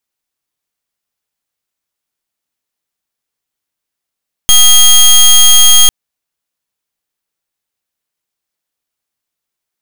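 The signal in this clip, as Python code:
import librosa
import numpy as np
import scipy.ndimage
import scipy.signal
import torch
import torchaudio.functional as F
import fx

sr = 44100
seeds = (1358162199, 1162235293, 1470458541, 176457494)

y = fx.pulse(sr, length_s=1.4, hz=3240.0, level_db=-4.0, duty_pct=17)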